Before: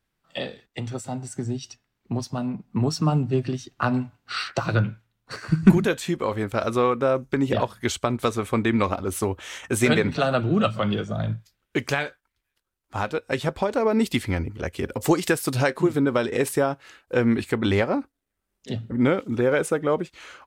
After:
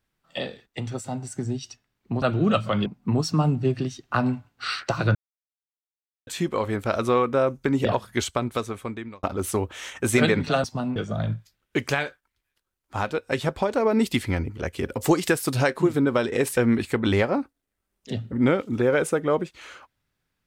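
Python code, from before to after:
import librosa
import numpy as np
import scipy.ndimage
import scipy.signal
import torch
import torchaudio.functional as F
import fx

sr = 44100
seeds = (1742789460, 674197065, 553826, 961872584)

y = fx.edit(x, sr, fx.swap(start_s=2.22, length_s=0.32, other_s=10.32, other_length_s=0.64),
    fx.silence(start_s=4.83, length_s=1.12),
    fx.fade_out_span(start_s=7.9, length_s=1.01),
    fx.cut(start_s=16.57, length_s=0.59), tone=tone)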